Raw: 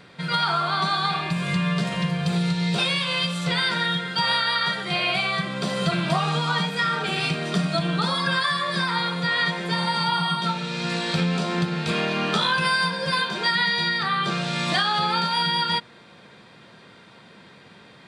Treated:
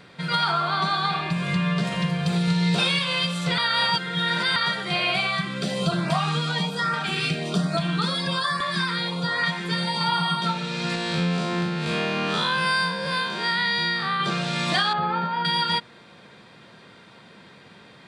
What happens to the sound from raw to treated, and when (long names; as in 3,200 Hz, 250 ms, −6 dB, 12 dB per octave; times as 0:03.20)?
0:00.51–0:01.84: high-shelf EQ 7,200 Hz −7.5 dB
0:02.43–0:02.99: double-tracking delay 45 ms −6 dB
0:03.58–0:04.56: reverse
0:05.27–0:10.01: auto-filter notch saw up 1.2 Hz 330–3,600 Hz
0:10.95–0:14.20: spectrum smeared in time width 94 ms
0:14.93–0:15.45: low-pass filter 1,600 Hz